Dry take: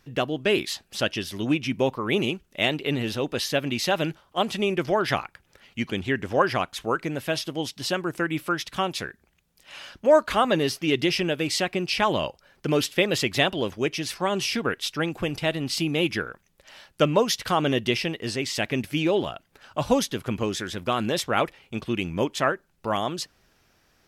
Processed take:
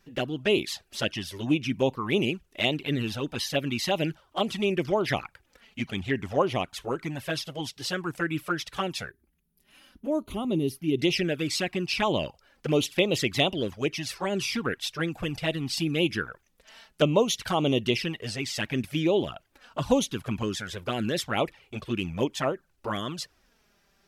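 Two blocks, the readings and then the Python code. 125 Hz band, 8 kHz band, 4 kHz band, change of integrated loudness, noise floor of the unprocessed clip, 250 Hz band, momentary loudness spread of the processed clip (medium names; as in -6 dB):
-0.5 dB, -3.0 dB, -2.5 dB, -2.5 dB, -66 dBFS, -1.5 dB, 9 LU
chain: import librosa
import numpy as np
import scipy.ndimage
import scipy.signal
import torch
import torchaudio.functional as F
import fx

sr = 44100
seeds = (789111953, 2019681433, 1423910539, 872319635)

y = fx.env_flanger(x, sr, rest_ms=5.2, full_db=-19.0)
y = fx.spec_box(y, sr, start_s=9.1, length_s=1.89, low_hz=410.0, high_hz=9200.0, gain_db=-12)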